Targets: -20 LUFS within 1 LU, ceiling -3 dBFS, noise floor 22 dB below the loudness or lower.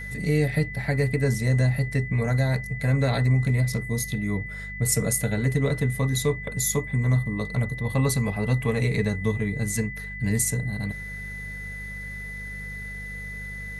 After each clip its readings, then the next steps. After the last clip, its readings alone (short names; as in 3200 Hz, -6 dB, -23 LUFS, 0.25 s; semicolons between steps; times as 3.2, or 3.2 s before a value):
hum 50 Hz; harmonics up to 200 Hz; hum level -36 dBFS; steady tone 2000 Hz; tone level -35 dBFS; loudness -25.5 LUFS; peak -11.0 dBFS; loudness target -20.0 LUFS
-> de-hum 50 Hz, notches 4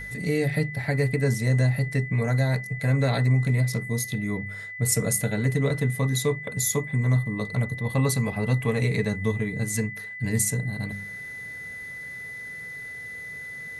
hum none; steady tone 2000 Hz; tone level -35 dBFS
-> notch 2000 Hz, Q 30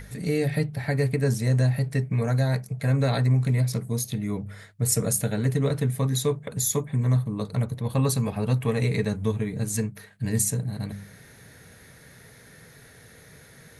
steady tone none; loudness -25.5 LUFS; peak -10.5 dBFS; loudness target -20.0 LUFS
-> gain +5.5 dB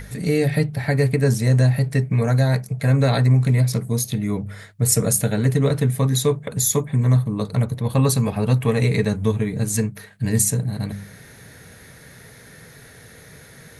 loudness -20.0 LUFS; peak -5.0 dBFS; noise floor -45 dBFS